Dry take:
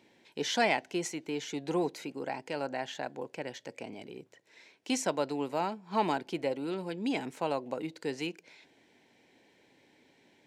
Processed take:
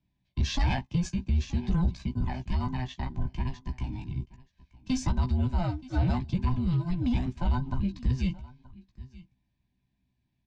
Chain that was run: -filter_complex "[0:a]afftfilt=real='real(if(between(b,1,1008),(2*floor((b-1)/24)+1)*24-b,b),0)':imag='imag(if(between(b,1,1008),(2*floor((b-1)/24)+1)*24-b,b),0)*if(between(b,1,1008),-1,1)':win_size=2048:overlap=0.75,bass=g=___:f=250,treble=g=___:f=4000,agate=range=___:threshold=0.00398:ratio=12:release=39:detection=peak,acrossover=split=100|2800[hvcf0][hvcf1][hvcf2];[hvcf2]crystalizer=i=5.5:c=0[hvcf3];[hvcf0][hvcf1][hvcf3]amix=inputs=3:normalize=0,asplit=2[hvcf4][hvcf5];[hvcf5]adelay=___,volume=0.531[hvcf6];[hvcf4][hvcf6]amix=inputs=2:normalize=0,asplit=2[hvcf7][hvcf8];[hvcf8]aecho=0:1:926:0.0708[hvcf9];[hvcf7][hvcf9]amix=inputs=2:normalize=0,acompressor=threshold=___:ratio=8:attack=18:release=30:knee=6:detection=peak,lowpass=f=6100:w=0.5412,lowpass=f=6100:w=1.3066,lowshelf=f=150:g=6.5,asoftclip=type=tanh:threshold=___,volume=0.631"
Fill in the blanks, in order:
15, -12, 0.0891, 16, 0.0891, 0.211